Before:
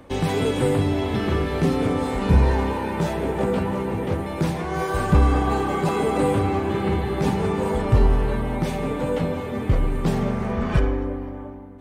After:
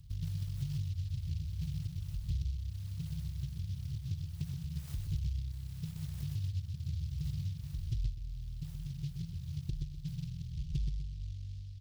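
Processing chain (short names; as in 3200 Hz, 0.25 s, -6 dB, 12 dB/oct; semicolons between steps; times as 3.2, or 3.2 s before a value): brick-wall FIR band-stop 160–9100 Hz; doubler 21 ms -9 dB; compressor 4:1, threshold -37 dBFS, peak gain reduction 20.5 dB; 8.9–11.2 ripple EQ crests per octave 0.74, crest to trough 9 dB; feedback echo 0.125 s, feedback 35%, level -5.5 dB; noise-modulated delay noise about 3900 Hz, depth 0.088 ms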